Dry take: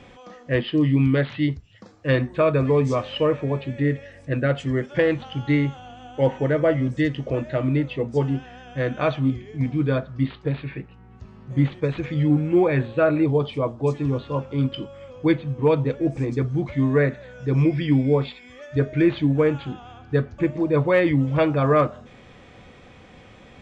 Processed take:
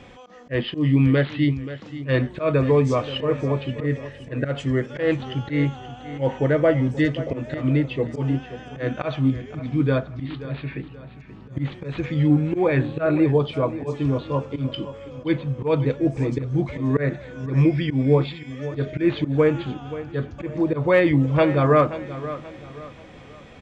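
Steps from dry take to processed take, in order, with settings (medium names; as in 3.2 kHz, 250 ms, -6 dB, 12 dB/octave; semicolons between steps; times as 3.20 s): slow attack 121 ms; feedback delay 530 ms, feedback 37%, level -14 dB; trim +1.5 dB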